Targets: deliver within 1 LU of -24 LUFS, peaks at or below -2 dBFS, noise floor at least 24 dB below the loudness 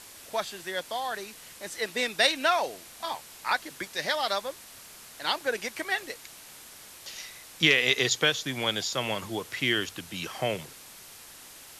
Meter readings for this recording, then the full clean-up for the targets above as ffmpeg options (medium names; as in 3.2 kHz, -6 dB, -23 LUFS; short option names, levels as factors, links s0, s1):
noise floor -49 dBFS; noise floor target -52 dBFS; loudness -28.0 LUFS; peak level -6.5 dBFS; loudness target -24.0 LUFS
-> -af "afftdn=nr=6:nf=-49"
-af "volume=1.58"